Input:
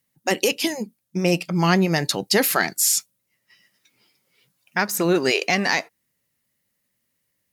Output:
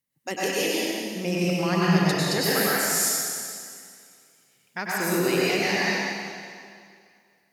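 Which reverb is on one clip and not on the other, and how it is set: plate-style reverb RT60 2.2 s, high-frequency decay 0.95×, pre-delay 85 ms, DRR -7.5 dB; gain -10.5 dB

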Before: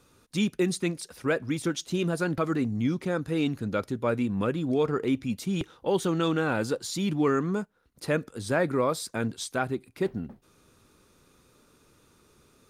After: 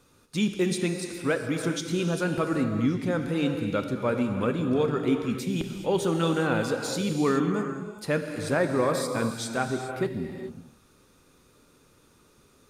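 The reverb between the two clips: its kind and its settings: non-linear reverb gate 0.45 s flat, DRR 4.5 dB

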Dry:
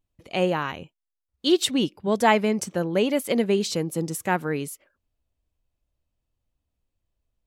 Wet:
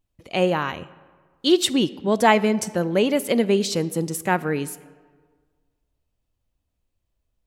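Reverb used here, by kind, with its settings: digital reverb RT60 1.6 s, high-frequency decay 0.6×, pre-delay 0 ms, DRR 17 dB; gain +2.5 dB

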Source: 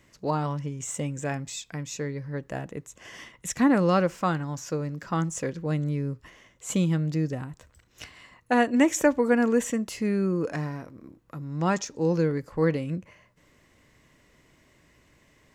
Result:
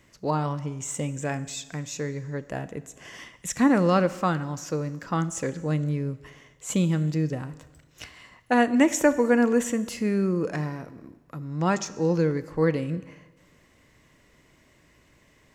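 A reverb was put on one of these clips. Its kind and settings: Schroeder reverb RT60 1.3 s, combs from 26 ms, DRR 15 dB; gain +1 dB

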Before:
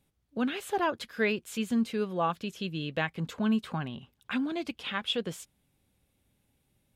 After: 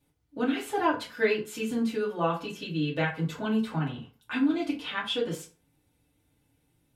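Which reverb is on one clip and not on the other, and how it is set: FDN reverb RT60 0.37 s, low-frequency decay 0.95×, high-frequency decay 0.65×, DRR -6.5 dB; gain -5 dB

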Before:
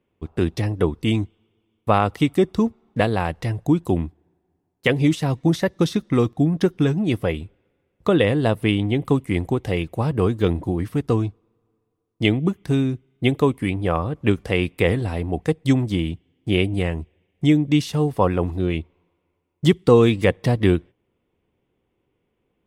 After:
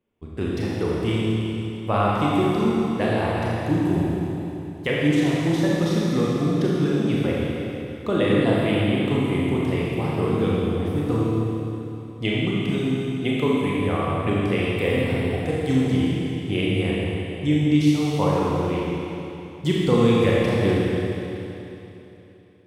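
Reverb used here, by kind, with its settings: Schroeder reverb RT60 3.2 s, combs from 27 ms, DRR -6 dB; gain -7.5 dB

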